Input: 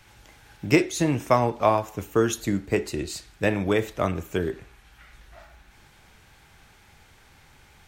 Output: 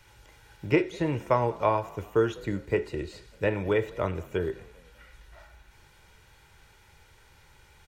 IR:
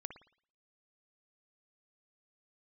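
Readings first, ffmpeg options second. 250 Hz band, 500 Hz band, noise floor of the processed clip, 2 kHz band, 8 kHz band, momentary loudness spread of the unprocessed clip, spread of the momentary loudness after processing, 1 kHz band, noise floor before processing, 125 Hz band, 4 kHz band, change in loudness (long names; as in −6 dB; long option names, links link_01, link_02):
−5.5 dB, −2.5 dB, −58 dBFS, −4.5 dB, below −15 dB, 10 LU, 10 LU, −4.0 dB, −55 dBFS, −3.5 dB, −8.5 dB, −3.5 dB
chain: -filter_complex "[0:a]acrossover=split=3400[link_01][link_02];[link_02]acompressor=threshold=-55dB:ratio=4:attack=1:release=60[link_03];[link_01][link_03]amix=inputs=2:normalize=0,aecho=1:1:2.1:0.46,asplit=4[link_04][link_05][link_06][link_07];[link_05]adelay=198,afreqshift=42,volume=-23dB[link_08];[link_06]adelay=396,afreqshift=84,volume=-29.7dB[link_09];[link_07]adelay=594,afreqshift=126,volume=-36.5dB[link_10];[link_04][link_08][link_09][link_10]amix=inputs=4:normalize=0,volume=-4dB"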